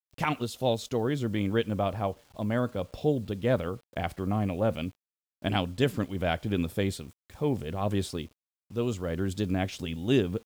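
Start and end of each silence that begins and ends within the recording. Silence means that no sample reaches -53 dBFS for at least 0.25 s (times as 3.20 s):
4.95–5.42 s
8.33–8.70 s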